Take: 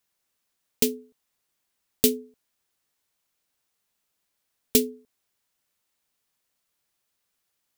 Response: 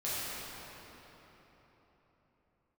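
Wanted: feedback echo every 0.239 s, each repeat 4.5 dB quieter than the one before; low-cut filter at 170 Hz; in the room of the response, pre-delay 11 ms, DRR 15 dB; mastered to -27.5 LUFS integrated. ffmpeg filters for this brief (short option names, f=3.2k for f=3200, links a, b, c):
-filter_complex "[0:a]highpass=170,aecho=1:1:239|478|717|956|1195|1434|1673|1912|2151:0.596|0.357|0.214|0.129|0.0772|0.0463|0.0278|0.0167|0.01,asplit=2[a][b];[1:a]atrim=start_sample=2205,adelay=11[c];[b][c]afir=irnorm=-1:irlink=0,volume=-21.5dB[d];[a][d]amix=inputs=2:normalize=0"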